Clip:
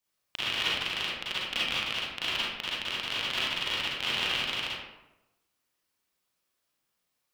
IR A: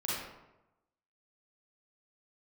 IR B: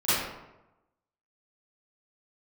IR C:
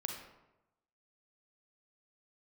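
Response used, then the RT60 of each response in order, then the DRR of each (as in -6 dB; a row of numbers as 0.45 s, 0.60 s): A; 0.95 s, 0.95 s, 0.95 s; -7.5 dB, -17.5 dB, 2.0 dB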